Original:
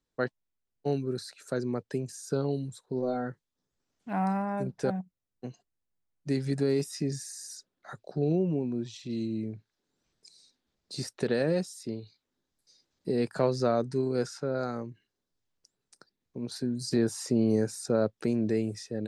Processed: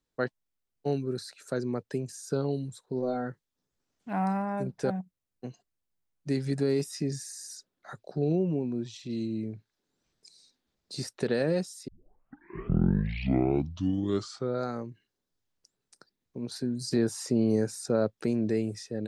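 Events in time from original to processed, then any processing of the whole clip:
11.88 s: tape start 2.79 s

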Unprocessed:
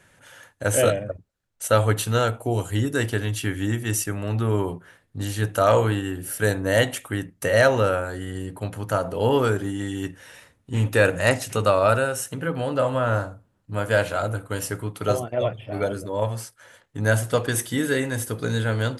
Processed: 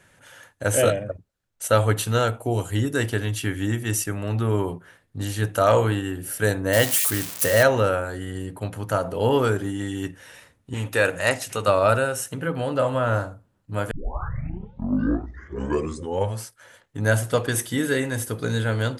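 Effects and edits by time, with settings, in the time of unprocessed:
6.73–7.63 s: zero-crossing glitches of -15.5 dBFS
10.74–11.68 s: bass shelf 390 Hz -8 dB
13.91 s: tape start 2.52 s

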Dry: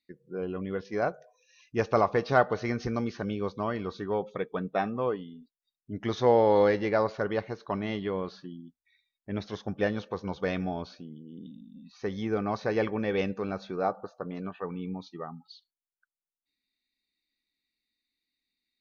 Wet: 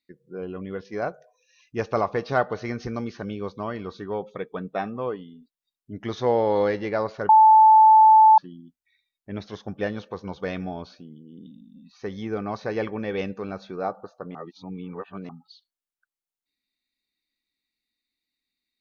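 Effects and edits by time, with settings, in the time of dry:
7.29–8.38 s: bleep 874 Hz -9.5 dBFS
14.35–15.29 s: reverse

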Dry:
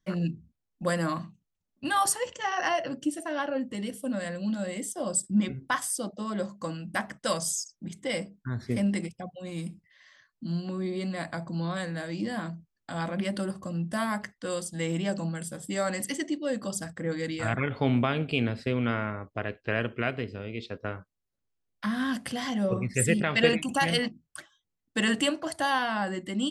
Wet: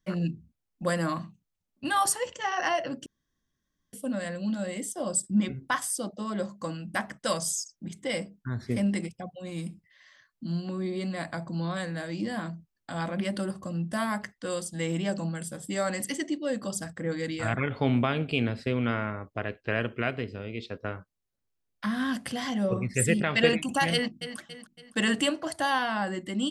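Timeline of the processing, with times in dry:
3.06–3.93 s: room tone
23.93–24.38 s: echo throw 280 ms, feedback 45%, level -10.5 dB

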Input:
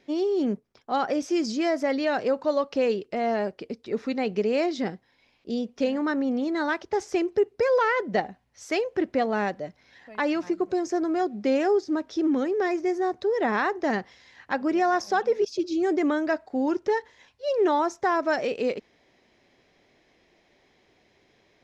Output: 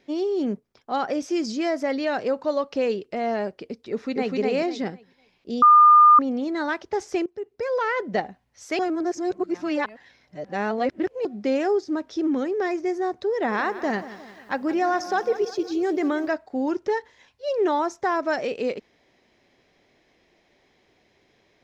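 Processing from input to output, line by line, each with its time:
3.90–4.37 s: echo throw 250 ms, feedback 25%, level -1.5 dB
5.62–6.19 s: bleep 1.21 kHz -9 dBFS
7.26–8.02 s: fade in, from -18.5 dB
8.79–11.25 s: reverse
13.33–16.28 s: bit-crushed delay 175 ms, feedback 55%, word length 9-bit, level -14 dB

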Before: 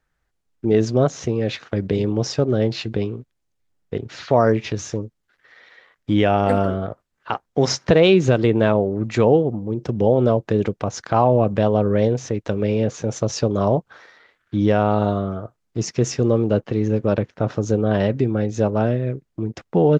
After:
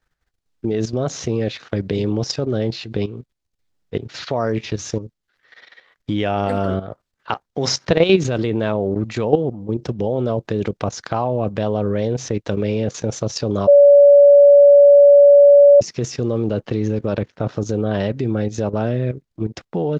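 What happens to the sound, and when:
13.67–15.81 s: bleep 571 Hz -8 dBFS
whole clip: peaking EQ 4.3 kHz +5 dB 1.2 oct; level held to a coarse grid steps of 12 dB; loudness maximiser +5 dB; trim -1 dB

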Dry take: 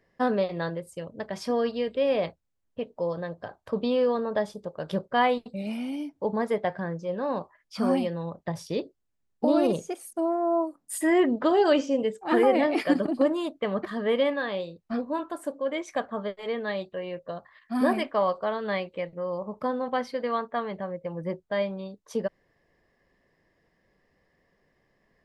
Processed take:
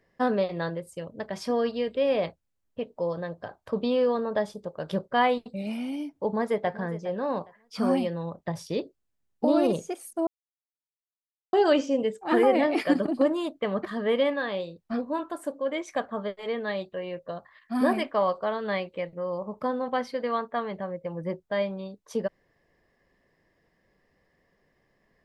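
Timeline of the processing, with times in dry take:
6.17–6.76 s: echo throw 410 ms, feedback 25%, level -15 dB
10.27–11.53 s: mute

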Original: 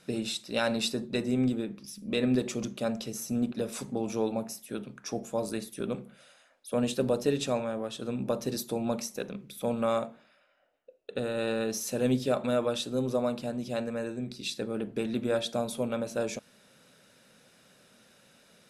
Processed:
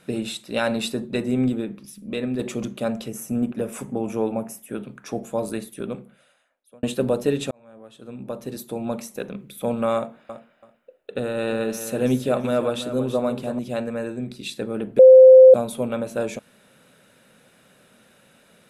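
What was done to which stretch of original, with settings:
1.76–2.39 s: fade out, to -7.5 dB
3.08–4.78 s: peaking EQ 4.1 kHz -13.5 dB 0.4 oct
5.52–6.83 s: fade out
7.51–9.38 s: fade in linear
9.96–13.59 s: feedback delay 332 ms, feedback 18%, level -11 dB
14.99–15.54 s: bleep 519 Hz -10 dBFS
whole clip: peaking EQ 5.3 kHz -9.5 dB 0.78 oct; trim +5.5 dB

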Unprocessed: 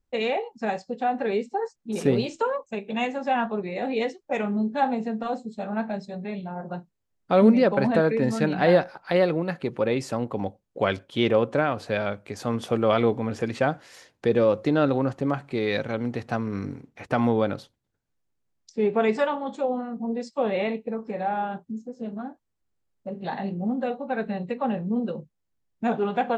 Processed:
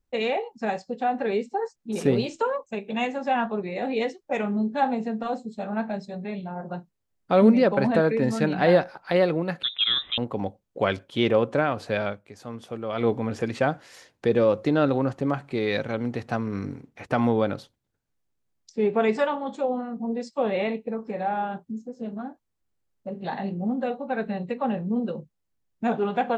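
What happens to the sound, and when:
9.63–10.18 s: frequency inversion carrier 3.8 kHz
12.06–13.09 s: dip -10 dB, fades 0.16 s

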